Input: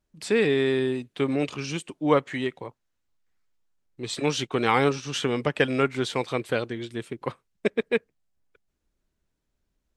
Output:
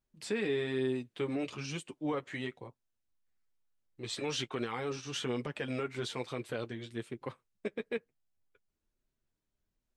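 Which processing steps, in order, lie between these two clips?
0:02.56–0:04.58: parametric band 1,800 Hz −6 dB → +5 dB 2.7 octaves
brickwall limiter −17 dBFS, peak gain reduction 11.5 dB
flanger 1.1 Hz, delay 7.4 ms, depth 2.8 ms, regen −26%
level −4 dB

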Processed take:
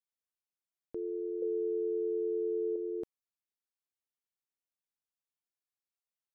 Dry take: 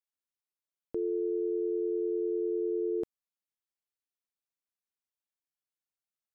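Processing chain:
0:01.42–0:02.76: parametric band 490 Hz +15 dB 0.22 octaves
level −5.5 dB

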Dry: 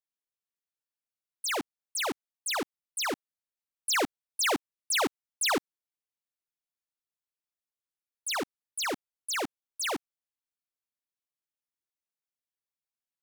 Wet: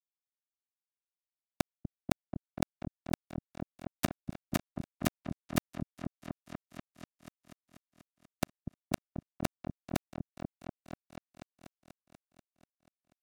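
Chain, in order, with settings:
high-pass filter 47 Hz 12 dB per octave
high-shelf EQ 6,600 Hz +3.5 dB
mains-hum notches 50/100/150 Hz
reversed playback
downward compressor 5 to 1, threshold −44 dBFS, peak gain reduction 16.5 dB
reversed playback
bit reduction 6 bits
on a send: echo whose low-pass opens from repeat to repeat 243 ms, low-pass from 200 Hz, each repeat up 1 octave, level −3 dB
on the sum: level +14 dB

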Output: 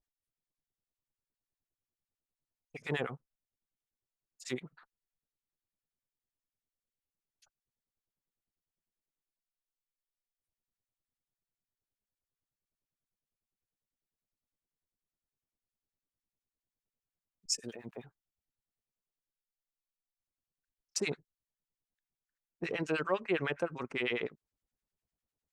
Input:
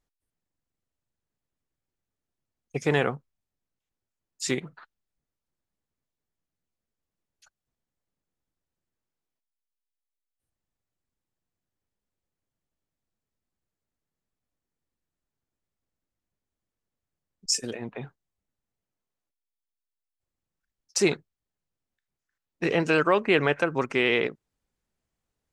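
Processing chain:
0:17.63–0:18.04: centre clipping without the shift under −59 dBFS
two-band tremolo in antiphase 9.9 Hz, depth 100%, crossover 1,100 Hz
level −6 dB

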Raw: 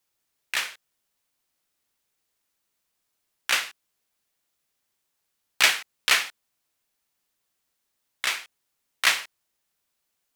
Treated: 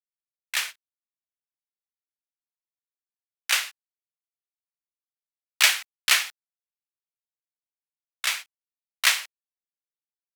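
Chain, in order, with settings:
high-pass filter 500 Hz 24 dB per octave
noise gate −34 dBFS, range −16 dB
spectral tilt +2 dB per octave
bit reduction 11 bits
level −2.5 dB

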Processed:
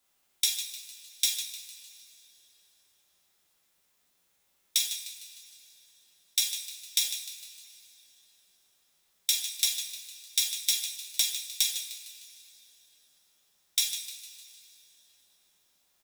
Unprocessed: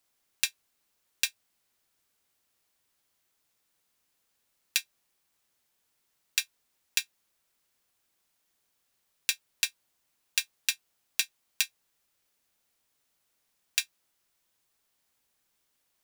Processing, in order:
echo with shifted repeats 152 ms, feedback 48%, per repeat +45 Hz, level −11 dB
coupled-rooms reverb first 0.49 s, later 3.4 s, from −19 dB, DRR −3.5 dB
formants moved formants +6 semitones
level −1 dB

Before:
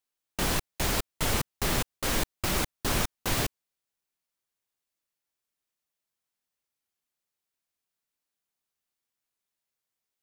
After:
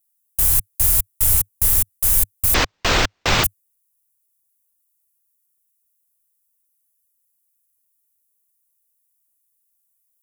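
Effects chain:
drawn EQ curve 100 Hz 0 dB, 170 Hz −19 dB, 4,400 Hz −12 dB, 11,000 Hz +11 dB
0:02.54–0:03.44: linearly interpolated sample-rate reduction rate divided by 4×
level +9 dB

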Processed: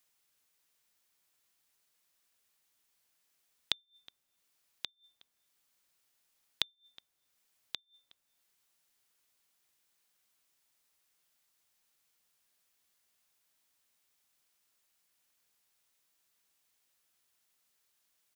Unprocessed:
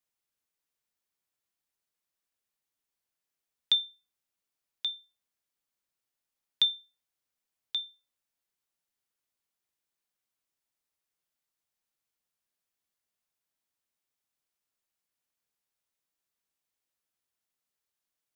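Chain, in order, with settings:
gate with flip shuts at −34 dBFS, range −40 dB
slap from a distant wall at 63 metres, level −21 dB
one half of a high-frequency compander encoder only
level +6 dB

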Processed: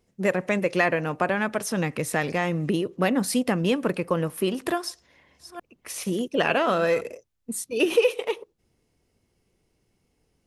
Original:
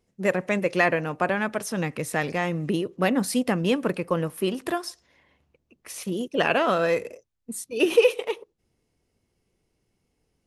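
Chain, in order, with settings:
0:04.74–0:07.01: delay that plays each chunk backwards 429 ms, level −13 dB
downward compressor 1.5 to 1, threshold −27 dBFS, peak gain reduction 6 dB
level +3 dB

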